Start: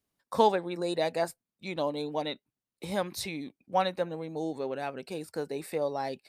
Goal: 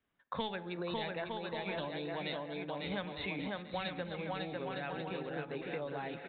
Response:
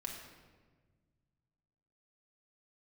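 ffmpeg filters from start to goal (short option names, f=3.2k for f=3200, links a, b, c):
-filter_complex "[0:a]equalizer=f=1.6k:t=o:w=1:g=7.5,bandreject=f=106.5:t=h:w=4,bandreject=f=213:t=h:w=4,bandreject=f=319.5:t=h:w=4,bandreject=f=426:t=h:w=4,bandreject=f=532.5:t=h:w=4,bandreject=f=639:t=h:w=4,bandreject=f=745.5:t=h:w=4,bandreject=f=852:t=h:w=4,acontrast=45,aecho=1:1:550|907.5|1140|1291|1389:0.631|0.398|0.251|0.158|0.1,asplit=2[a][b];[1:a]atrim=start_sample=2205[c];[b][c]afir=irnorm=-1:irlink=0,volume=-14dB[d];[a][d]amix=inputs=2:normalize=0,acrossover=split=160|3000[e][f][g];[f]acompressor=threshold=-32dB:ratio=6[h];[e][h][g]amix=inputs=3:normalize=0,aresample=8000,aresample=44100,volume=-6.5dB"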